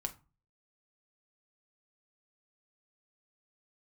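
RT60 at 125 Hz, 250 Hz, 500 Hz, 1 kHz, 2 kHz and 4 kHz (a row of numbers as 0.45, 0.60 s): 0.55, 0.40, 0.30, 0.35, 0.25, 0.20 s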